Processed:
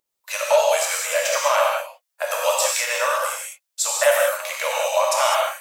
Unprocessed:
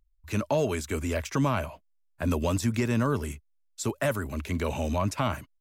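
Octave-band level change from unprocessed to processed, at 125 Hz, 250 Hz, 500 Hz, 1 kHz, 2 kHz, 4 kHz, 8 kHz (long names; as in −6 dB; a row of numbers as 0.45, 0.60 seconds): below −40 dB, below −40 dB, +10.5 dB, +12.0 dB, +12.5 dB, +15.0 dB, +17.0 dB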